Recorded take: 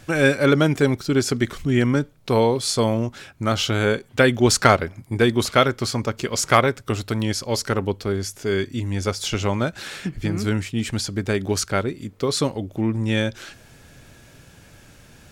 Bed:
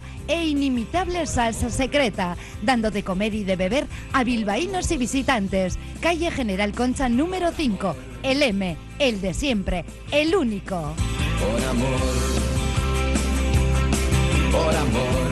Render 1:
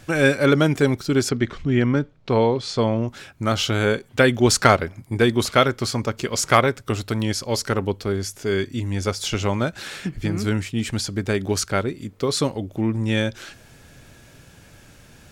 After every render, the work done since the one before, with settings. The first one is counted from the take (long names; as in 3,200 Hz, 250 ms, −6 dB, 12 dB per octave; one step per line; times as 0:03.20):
0:01.29–0:03.08: high-frequency loss of the air 140 metres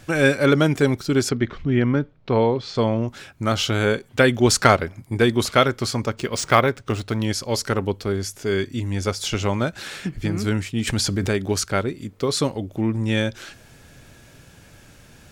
0:01.34–0:02.75: high-frequency loss of the air 120 metres
0:06.14–0:07.25: linearly interpolated sample-rate reduction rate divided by 3×
0:10.87–0:11.29: envelope flattener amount 70%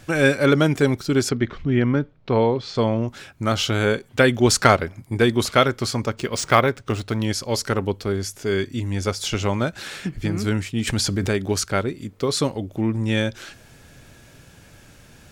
no processing that can be heard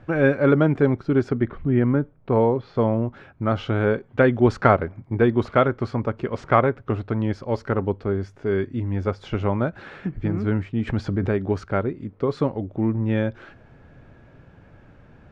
low-pass filter 1,400 Hz 12 dB per octave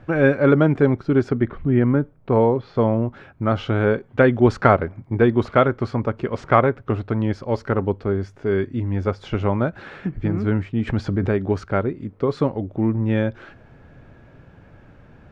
level +2 dB
brickwall limiter −1 dBFS, peak gain reduction 1 dB